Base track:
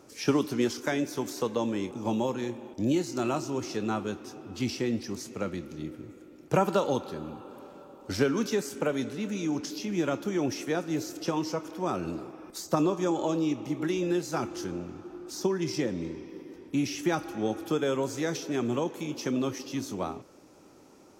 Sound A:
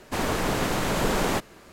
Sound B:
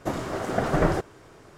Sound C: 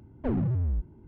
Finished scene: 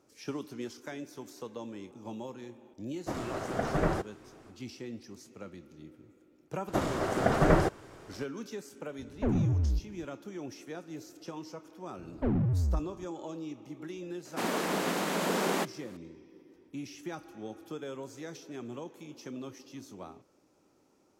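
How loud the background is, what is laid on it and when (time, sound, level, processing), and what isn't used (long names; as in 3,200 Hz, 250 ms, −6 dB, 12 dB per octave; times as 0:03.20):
base track −12.5 dB
0:03.01: mix in B −6.5 dB, fades 0.10 s
0:06.68: mix in B −1 dB
0:08.98: mix in C −0.5 dB
0:11.98: mix in C −1 dB
0:14.25: mix in A −4 dB + elliptic high-pass filter 170 Hz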